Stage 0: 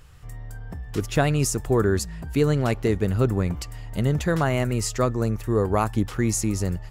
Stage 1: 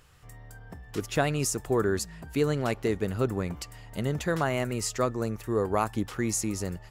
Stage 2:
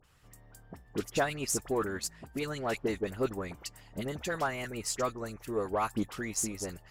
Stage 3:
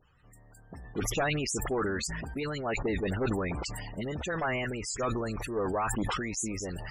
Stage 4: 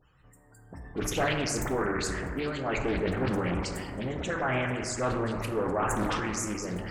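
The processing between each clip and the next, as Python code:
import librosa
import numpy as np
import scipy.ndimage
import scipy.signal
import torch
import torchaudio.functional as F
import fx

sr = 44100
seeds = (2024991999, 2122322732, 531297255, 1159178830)

y1 = fx.low_shelf(x, sr, hz=140.0, db=-10.5)
y1 = y1 * 10.0 ** (-3.0 / 20.0)
y2 = fx.hpss(y1, sr, part='harmonic', gain_db=-11)
y2 = fx.dispersion(y2, sr, late='highs', ms=41.0, hz=1600.0)
y2 = fx.cheby_harmonics(y2, sr, harmonics=(8,), levels_db=(-33,), full_scale_db=-15.0)
y2 = y2 * 10.0 ** (-1.5 / 20.0)
y3 = np.minimum(y2, 2.0 * 10.0 ** (-24.5 / 20.0) - y2)
y3 = fx.spec_topn(y3, sr, count=64)
y3 = fx.sustainer(y3, sr, db_per_s=21.0)
y4 = fx.rev_plate(y3, sr, seeds[0], rt60_s=2.1, hf_ratio=0.25, predelay_ms=0, drr_db=2.0)
y4 = fx.doppler_dist(y4, sr, depth_ms=0.57)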